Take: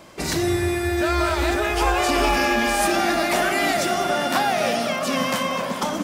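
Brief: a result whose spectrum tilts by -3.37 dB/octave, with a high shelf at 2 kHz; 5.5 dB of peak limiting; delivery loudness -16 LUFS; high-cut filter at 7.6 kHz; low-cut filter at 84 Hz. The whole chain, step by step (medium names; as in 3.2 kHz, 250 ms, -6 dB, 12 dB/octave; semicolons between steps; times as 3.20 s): high-pass 84 Hz; low-pass 7.6 kHz; treble shelf 2 kHz -5.5 dB; trim +8 dB; peak limiter -7 dBFS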